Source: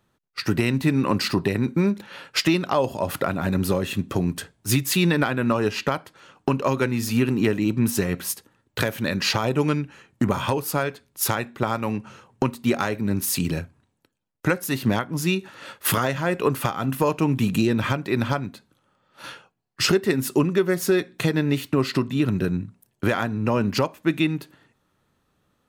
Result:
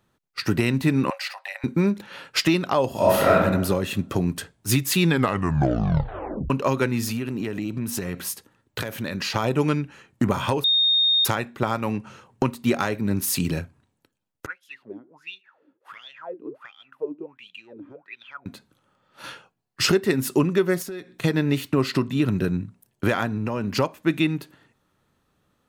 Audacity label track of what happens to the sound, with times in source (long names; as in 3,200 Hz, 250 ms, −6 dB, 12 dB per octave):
1.100000	1.640000	Chebyshev high-pass with heavy ripple 540 Hz, ripple 9 dB
2.910000	3.350000	thrown reverb, RT60 1 s, DRR −7 dB
5.030000	5.030000	tape stop 1.47 s
7.090000	9.360000	downward compressor, threshold −24 dBFS
10.640000	11.250000	beep over 3,690 Hz −16 dBFS
14.460000	18.460000	LFO wah 1.4 Hz 280–3,400 Hz, Q 14
20.820000	21.240000	downward compressor 2.5 to 1, threshold −38 dBFS
23.370000	23.790000	downward compressor 3 to 1, threshold −23 dBFS